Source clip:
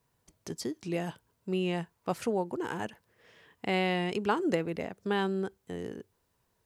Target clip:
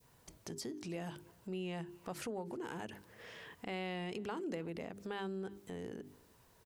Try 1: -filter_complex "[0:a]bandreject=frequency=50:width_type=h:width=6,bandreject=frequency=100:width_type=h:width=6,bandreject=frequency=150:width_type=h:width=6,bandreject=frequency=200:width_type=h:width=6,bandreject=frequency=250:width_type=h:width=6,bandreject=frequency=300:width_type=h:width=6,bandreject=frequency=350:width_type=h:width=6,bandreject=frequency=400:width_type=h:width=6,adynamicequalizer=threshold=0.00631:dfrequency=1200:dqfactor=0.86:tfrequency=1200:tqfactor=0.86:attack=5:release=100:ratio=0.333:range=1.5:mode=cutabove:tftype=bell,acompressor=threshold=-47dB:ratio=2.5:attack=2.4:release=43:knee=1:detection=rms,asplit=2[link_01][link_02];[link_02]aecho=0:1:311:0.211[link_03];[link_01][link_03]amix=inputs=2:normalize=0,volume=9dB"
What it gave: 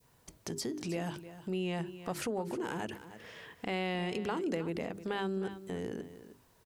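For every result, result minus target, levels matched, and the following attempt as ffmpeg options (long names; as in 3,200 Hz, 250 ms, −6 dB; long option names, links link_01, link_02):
echo-to-direct +11.5 dB; downward compressor: peak gain reduction −6.5 dB
-filter_complex "[0:a]bandreject=frequency=50:width_type=h:width=6,bandreject=frequency=100:width_type=h:width=6,bandreject=frequency=150:width_type=h:width=6,bandreject=frequency=200:width_type=h:width=6,bandreject=frequency=250:width_type=h:width=6,bandreject=frequency=300:width_type=h:width=6,bandreject=frequency=350:width_type=h:width=6,bandreject=frequency=400:width_type=h:width=6,adynamicequalizer=threshold=0.00631:dfrequency=1200:dqfactor=0.86:tfrequency=1200:tqfactor=0.86:attack=5:release=100:ratio=0.333:range=1.5:mode=cutabove:tftype=bell,acompressor=threshold=-47dB:ratio=2.5:attack=2.4:release=43:knee=1:detection=rms,asplit=2[link_01][link_02];[link_02]aecho=0:1:311:0.0562[link_03];[link_01][link_03]amix=inputs=2:normalize=0,volume=9dB"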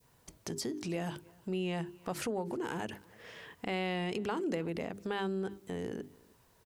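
downward compressor: peak gain reduction −6.5 dB
-filter_complex "[0:a]bandreject=frequency=50:width_type=h:width=6,bandreject=frequency=100:width_type=h:width=6,bandreject=frequency=150:width_type=h:width=6,bandreject=frequency=200:width_type=h:width=6,bandreject=frequency=250:width_type=h:width=6,bandreject=frequency=300:width_type=h:width=6,bandreject=frequency=350:width_type=h:width=6,bandreject=frequency=400:width_type=h:width=6,adynamicequalizer=threshold=0.00631:dfrequency=1200:dqfactor=0.86:tfrequency=1200:tqfactor=0.86:attack=5:release=100:ratio=0.333:range=1.5:mode=cutabove:tftype=bell,acompressor=threshold=-57.5dB:ratio=2.5:attack=2.4:release=43:knee=1:detection=rms,asplit=2[link_01][link_02];[link_02]aecho=0:1:311:0.0562[link_03];[link_01][link_03]amix=inputs=2:normalize=0,volume=9dB"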